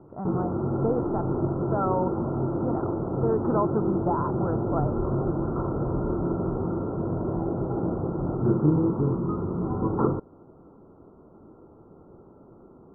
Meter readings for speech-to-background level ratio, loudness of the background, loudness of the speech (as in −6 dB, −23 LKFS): −3.5 dB, −27.5 LKFS, −31.0 LKFS